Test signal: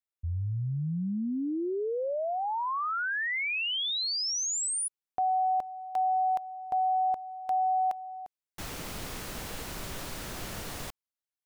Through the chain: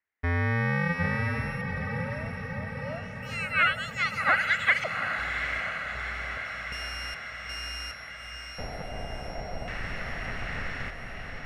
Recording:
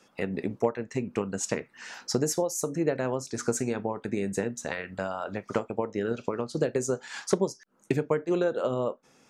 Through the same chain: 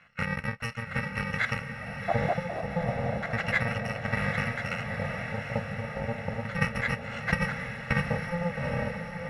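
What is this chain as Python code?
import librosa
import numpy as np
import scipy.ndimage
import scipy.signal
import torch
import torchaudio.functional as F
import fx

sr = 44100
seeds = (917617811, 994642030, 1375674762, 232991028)

y = fx.bit_reversed(x, sr, seeds[0], block=128)
y = fx.filter_lfo_lowpass(y, sr, shape='square', hz=0.31, low_hz=690.0, high_hz=1900.0, q=5.9)
y = fx.echo_diffused(y, sr, ms=799, feedback_pct=66, wet_db=-6)
y = y * librosa.db_to_amplitude(5.5)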